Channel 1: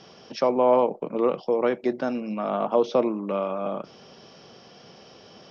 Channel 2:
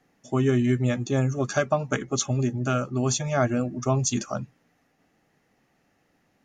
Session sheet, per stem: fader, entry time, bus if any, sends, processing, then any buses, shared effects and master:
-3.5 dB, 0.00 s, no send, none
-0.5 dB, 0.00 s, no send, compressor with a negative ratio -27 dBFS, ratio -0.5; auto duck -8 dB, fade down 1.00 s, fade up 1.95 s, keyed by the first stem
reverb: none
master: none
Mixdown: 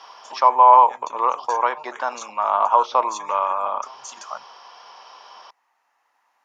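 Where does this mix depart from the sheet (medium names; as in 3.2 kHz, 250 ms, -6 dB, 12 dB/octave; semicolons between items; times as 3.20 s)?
stem 1 -3.5 dB -> +2.5 dB; master: extra resonant high-pass 970 Hz, resonance Q 6.6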